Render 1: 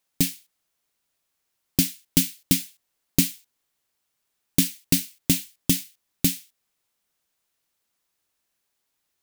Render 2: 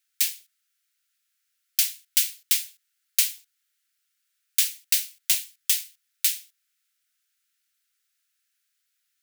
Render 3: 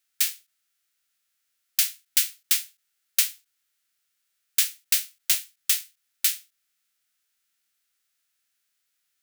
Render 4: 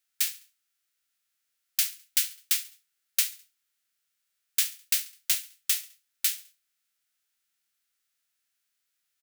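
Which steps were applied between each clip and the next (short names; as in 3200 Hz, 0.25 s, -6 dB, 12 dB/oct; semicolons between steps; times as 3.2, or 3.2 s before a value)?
steep high-pass 1300 Hz 96 dB/oct; gain +1.5 dB
spectral whitening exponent 0.6; ending taper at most 230 dB/s
feedback echo 69 ms, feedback 42%, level -19.5 dB; gain -3.5 dB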